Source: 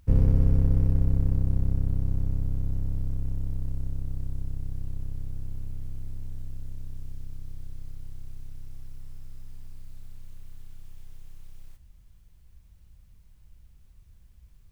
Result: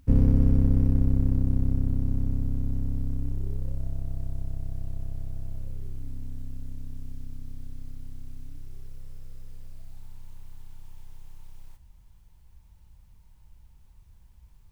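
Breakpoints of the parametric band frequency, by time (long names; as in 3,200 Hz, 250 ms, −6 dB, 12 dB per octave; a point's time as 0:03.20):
parametric band +12.5 dB 0.31 octaves
0:03.20 260 Hz
0:03.87 680 Hz
0:05.54 680 Hz
0:06.11 250 Hz
0:08.44 250 Hz
0:08.94 480 Hz
0:09.57 480 Hz
0:10.03 900 Hz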